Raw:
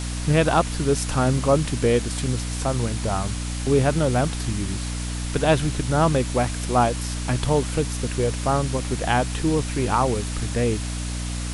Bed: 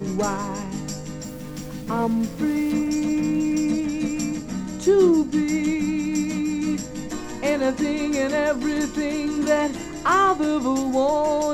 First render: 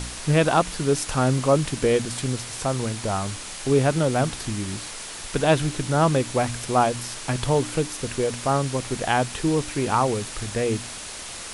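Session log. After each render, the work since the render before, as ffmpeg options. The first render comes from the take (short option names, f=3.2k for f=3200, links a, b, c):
-af "bandreject=f=60:t=h:w=4,bandreject=f=120:t=h:w=4,bandreject=f=180:t=h:w=4,bandreject=f=240:t=h:w=4,bandreject=f=300:t=h:w=4"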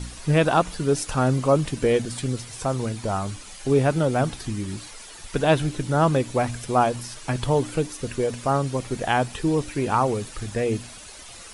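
-af "afftdn=nr=10:nf=-36"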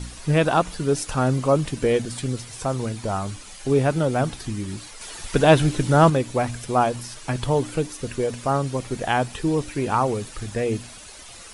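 -filter_complex "[0:a]asettb=1/sr,asplit=3[a][b][c];[a]atrim=end=5.014[d];[b]atrim=start=5.01:end=6.1,asetpts=PTS-STARTPTS,afade=t=in:d=0.004:c=qsin,afade=t=out:st=1.086:d=0.004:c=qsin,acontrast=32[e];[c]atrim=start=6.096[f];[d][e]acrossfade=d=0.004:c1=hsin:c2=qsin[g];[g][f]acrossfade=d=0.004:c1=qsin:c2=hsin"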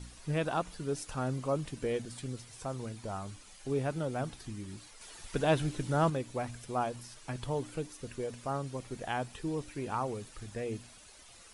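-af "volume=-13dB"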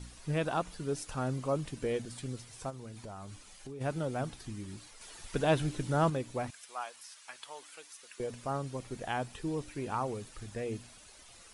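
-filter_complex "[0:a]asplit=3[a][b][c];[a]afade=t=out:st=2.69:d=0.02[d];[b]acompressor=threshold=-41dB:ratio=6:attack=3.2:release=140:knee=1:detection=peak,afade=t=in:st=2.69:d=0.02,afade=t=out:st=3.8:d=0.02[e];[c]afade=t=in:st=3.8:d=0.02[f];[d][e][f]amix=inputs=3:normalize=0,asettb=1/sr,asplit=3[g][h][i];[g]atrim=end=6.504[j];[h]atrim=start=6.5:end=8.2,asetpts=PTS-STARTPTS,afade=t=in:d=0.004:c=qsin,afade=t=out:st=1.696:d=0.004:c=qsin,highpass=1.2k[k];[i]atrim=start=8.196[l];[j][k]acrossfade=d=0.004:c1=hsin:c2=qsin[m];[m][l]acrossfade=d=0.004:c1=qsin:c2=hsin"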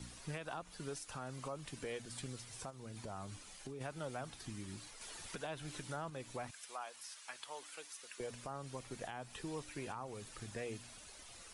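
-filter_complex "[0:a]acrossover=split=87|680[a][b][c];[a]acompressor=threshold=-60dB:ratio=4[d];[b]acompressor=threshold=-45dB:ratio=4[e];[c]acompressor=threshold=-38dB:ratio=4[f];[d][e][f]amix=inputs=3:normalize=0,alimiter=level_in=8.5dB:limit=-24dB:level=0:latency=1:release=294,volume=-8.5dB"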